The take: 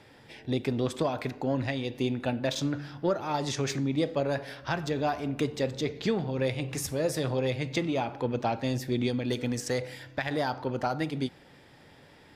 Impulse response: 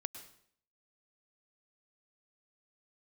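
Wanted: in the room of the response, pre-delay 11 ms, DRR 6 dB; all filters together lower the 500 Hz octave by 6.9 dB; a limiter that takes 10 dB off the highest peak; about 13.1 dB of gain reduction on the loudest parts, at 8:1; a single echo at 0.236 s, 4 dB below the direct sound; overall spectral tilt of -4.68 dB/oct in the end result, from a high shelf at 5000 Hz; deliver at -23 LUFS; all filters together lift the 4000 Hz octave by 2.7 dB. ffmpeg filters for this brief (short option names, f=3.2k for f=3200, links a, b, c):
-filter_complex "[0:a]equalizer=f=500:t=o:g=-8.5,equalizer=f=4k:t=o:g=6.5,highshelf=f=5k:g=-7.5,acompressor=threshold=-40dB:ratio=8,alimiter=level_in=11.5dB:limit=-24dB:level=0:latency=1,volume=-11.5dB,aecho=1:1:236:0.631,asplit=2[a][b];[1:a]atrim=start_sample=2205,adelay=11[c];[b][c]afir=irnorm=-1:irlink=0,volume=-4.5dB[d];[a][d]amix=inputs=2:normalize=0,volume=21.5dB"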